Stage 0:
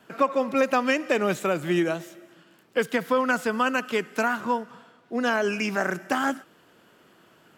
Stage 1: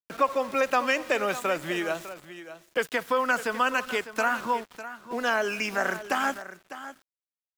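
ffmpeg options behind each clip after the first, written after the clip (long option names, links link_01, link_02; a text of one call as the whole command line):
ffmpeg -i in.wav -filter_complex "[0:a]acrossover=split=470|2800[link_01][link_02][link_03];[link_01]acompressor=threshold=-37dB:ratio=6[link_04];[link_04][link_02][link_03]amix=inputs=3:normalize=0,aeval=exprs='val(0)*gte(abs(val(0)),0.00891)':channel_layout=same,aecho=1:1:602:0.211" out.wav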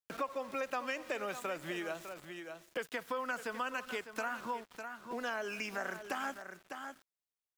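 ffmpeg -i in.wav -af "acompressor=threshold=-40dB:ratio=2,volume=-2.5dB" out.wav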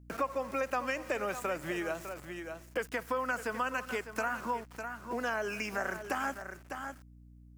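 ffmpeg -i in.wav -af "equalizer=frequency=3600:width=2.1:gain=-8,aeval=exprs='val(0)+0.00126*(sin(2*PI*60*n/s)+sin(2*PI*2*60*n/s)/2+sin(2*PI*3*60*n/s)/3+sin(2*PI*4*60*n/s)/4+sin(2*PI*5*60*n/s)/5)':channel_layout=same,volume=4.5dB" out.wav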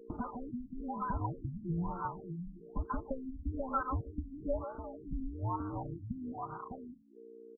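ffmpeg -i in.wav -filter_complex "[0:a]afftfilt=real='real(if(between(b,1,1008),(2*floor((b-1)/24)+1)*24-b,b),0)':imag='imag(if(between(b,1,1008),(2*floor((b-1)/24)+1)*24-b,b),0)*if(between(b,1,1008),-1,1)':win_size=2048:overlap=0.75,acrossover=split=770[link_01][link_02];[link_02]adelay=140[link_03];[link_01][link_03]amix=inputs=2:normalize=0,afftfilt=real='re*lt(b*sr/1024,280*pow(1600/280,0.5+0.5*sin(2*PI*1.1*pts/sr)))':imag='im*lt(b*sr/1024,280*pow(1600/280,0.5+0.5*sin(2*PI*1.1*pts/sr)))':win_size=1024:overlap=0.75,volume=2.5dB" out.wav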